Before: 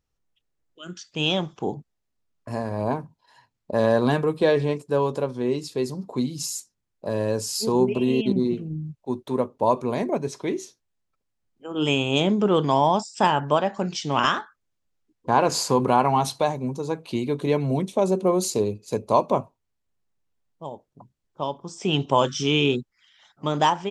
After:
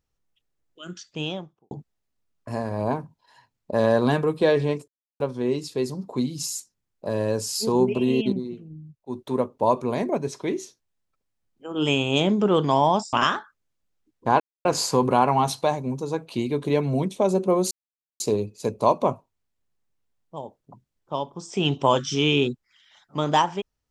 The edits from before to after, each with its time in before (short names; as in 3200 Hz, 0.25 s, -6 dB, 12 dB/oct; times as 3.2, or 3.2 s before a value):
0.92–1.71 studio fade out
4.88–5.2 mute
8.27–9.21 dip -10 dB, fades 0.15 s
13.13–14.15 cut
15.42 insert silence 0.25 s
18.48 insert silence 0.49 s